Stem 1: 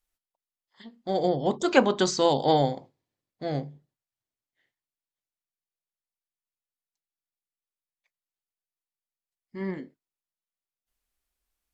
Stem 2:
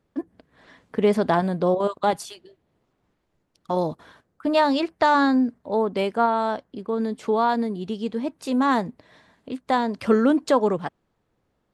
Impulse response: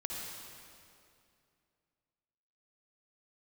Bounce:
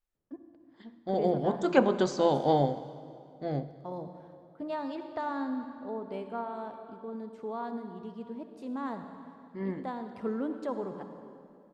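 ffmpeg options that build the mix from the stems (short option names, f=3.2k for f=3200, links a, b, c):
-filter_complex "[0:a]volume=-3.5dB,asplit=3[a][b][c];[b]volume=-12.5dB[d];[1:a]adelay=150,volume=-18dB,asplit=2[e][f];[f]volume=-3.5dB[g];[c]apad=whole_len=524270[h];[e][h]sidechaincompress=threshold=-26dB:ratio=8:attack=16:release=1270[i];[2:a]atrim=start_sample=2205[j];[d][g]amix=inputs=2:normalize=0[k];[k][j]afir=irnorm=-1:irlink=0[l];[a][i][l]amix=inputs=3:normalize=0,highshelf=f=2k:g=-11"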